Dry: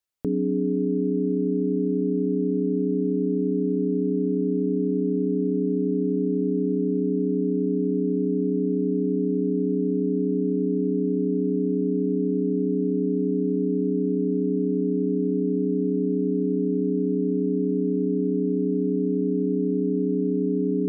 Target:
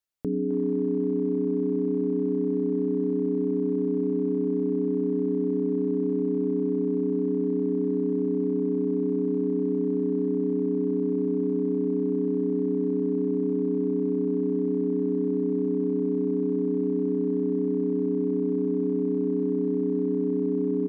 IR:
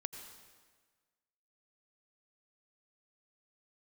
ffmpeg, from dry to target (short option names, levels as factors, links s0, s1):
-filter_complex "[0:a]asplit=2[s0][s1];[s1]adelay=260,highpass=300,lowpass=3400,asoftclip=type=hard:threshold=0.0708,volume=0.355[s2];[s0][s2]amix=inputs=2:normalize=0,asplit=2[s3][s4];[1:a]atrim=start_sample=2205[s5];[s4][s5]afir=irnorm=-1:irlink=0,volume=0.596[s6];[s3][s6]amix=inputs=2:normalize=0,volume=0.501"